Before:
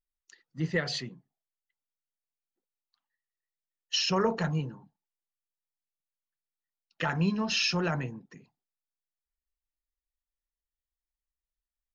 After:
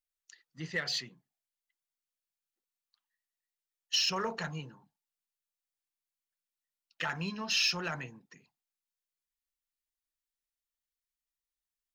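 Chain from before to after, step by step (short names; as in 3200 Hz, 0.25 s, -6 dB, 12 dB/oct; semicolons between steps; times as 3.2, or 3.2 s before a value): tilt shelf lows -6.5 dB; in parallel at -10.5 dB: overloaded stage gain 26.5 dB; on the sum: gain -7 dB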